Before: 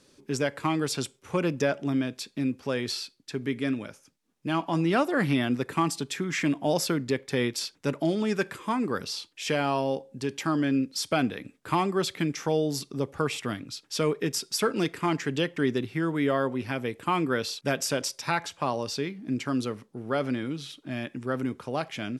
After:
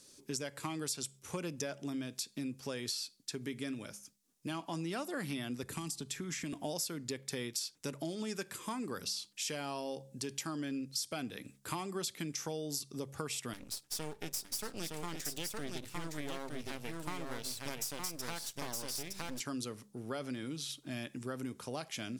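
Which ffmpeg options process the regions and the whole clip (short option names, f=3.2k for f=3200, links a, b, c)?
-filter_complex "[0:a]asettb=1/sr,asplit=3[a][b][c];[a]atrim=end=5.634[d];[b]atrim=start=5.63:end=6.53,asetpts=PTS-STARTPTS,afade=t=in:d=0.004:c=qsin,afade=t=out:st=0.896:d=0.004:c=qsin,acrossover=split=390|3100[e][f][g];[e]acompressor=threshold=-37dB:ratio=4[h];[f]acompressor=threshold=-39dB:ratio=4[i];[g]acompressor=threshold=-44dB:ratio=4[j];[h][i][j]amix=inputs=3:normalize=0,lowshelf=f=150:g=10.5[k];[c]atrim=start=6.526[l];[d][k]acrossfade=d=0.004:c1=hsin:c2=qsin[m];[m][l]acrossfade=d=0.004:c1=qsin:c2=hsin,asettb=1/sr,asplit=3[n][o][p];[n]atrim=end=13.534[q];[o]atrim=start=13.53:end=19.4,asetpts=PTS-STARTPTS,afade=t=in:d=0.004:c=qsin,afade=t=out:st=5.866:d=0.004:c=qsin,aeval=exprs='max(val(0),0)':c=same,aecho=1:1:914:0.631,atrim=end_sample=258867[r];[p]atrim=start=19.396[s];[q][r]acrossfade=d=0.004:c1=hsin:c2=qsin[t];[t][s]acrossfade=d=0.004:c1=qsin:c2=hsin,bass=f=250:g=1,treble=f=4k:g=15,bandreject=f=67.92:t=h:w=4,bandreject=f=135.84:t=h:w=4,bandreject=f=203.76:t=h:w=4,acompressor=threshold=-30dB:ratio=4,volume=-6.5dB"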